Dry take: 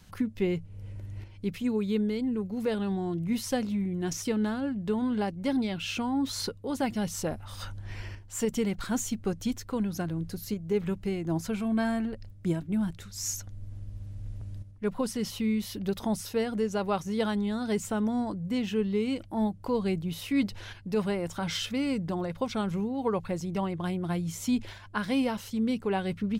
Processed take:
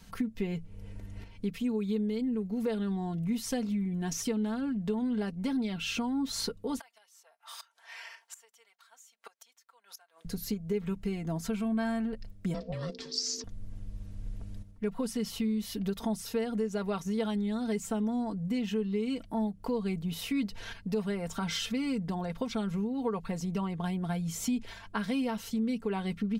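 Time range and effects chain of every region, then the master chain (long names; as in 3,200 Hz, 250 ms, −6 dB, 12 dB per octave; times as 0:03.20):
0:06.79–0:10.25: high-pass filter 750 Hz 24 dB per octave + gate with flip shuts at −33 dBFS, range −24 dB
0:12.54–0:13.44: low-pass with resonance 4,900 Hz, resonance Q 8.9 + ring modulation 350 Hz
whole clip: comb filter 4.4 ms, depth 69%; downward compressor 2.5 to 1, threshold −31 dBFS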